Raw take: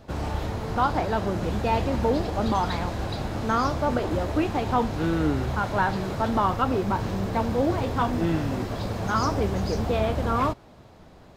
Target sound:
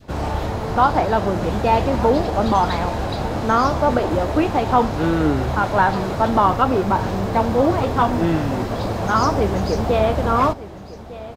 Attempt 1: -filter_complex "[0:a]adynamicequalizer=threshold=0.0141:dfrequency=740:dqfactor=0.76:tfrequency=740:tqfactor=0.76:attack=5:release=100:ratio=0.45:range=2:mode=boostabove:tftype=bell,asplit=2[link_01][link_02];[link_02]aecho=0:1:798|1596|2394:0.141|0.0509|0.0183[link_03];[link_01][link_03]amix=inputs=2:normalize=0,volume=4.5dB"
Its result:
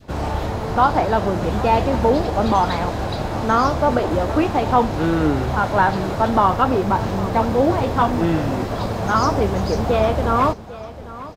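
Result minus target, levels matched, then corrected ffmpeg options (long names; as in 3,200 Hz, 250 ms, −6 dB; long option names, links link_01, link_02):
echo 406 ms early
-filter_complex "[0:a]adynamicequalizer=threshold=0.0141:dfrequency=740:dqfactor=0.76:tfrequency=740:tqfactor=0.76:attack=5:release=100:ratio=0.45:range=2:mode=boostabove:tftype=bell,asplit=2[link_01][link_02];[link_02]aecho=0:1:1204|2408|3612:0.141|0.0509|0.0183[link_03];[link_01][link_03]amix=inputs=2:normalize=0,volume=4.5dB"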